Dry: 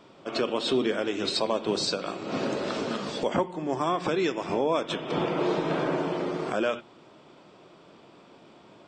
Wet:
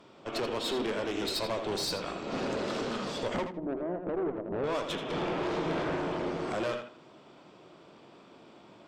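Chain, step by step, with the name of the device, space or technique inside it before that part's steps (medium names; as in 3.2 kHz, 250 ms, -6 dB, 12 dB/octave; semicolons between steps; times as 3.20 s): 3.43–4.64 s: Chebyshev band-pass 170–640 Hz, order 4; rockabilly slapback (valve stage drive 28 dB, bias 0.55; tape echo 81 ms, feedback 24%, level -6 dB, low-pass 4.7 kHz)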